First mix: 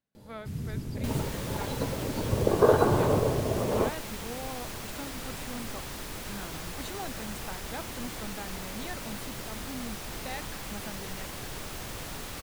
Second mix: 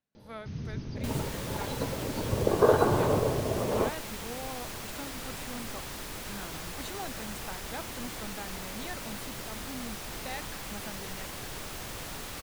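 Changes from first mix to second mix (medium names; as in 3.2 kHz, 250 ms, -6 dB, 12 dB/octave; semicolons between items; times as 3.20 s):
first sound: add brick-wall FIR low-pass 6.5 kHz; master: add bass shelf 400 Hz -2.5 dB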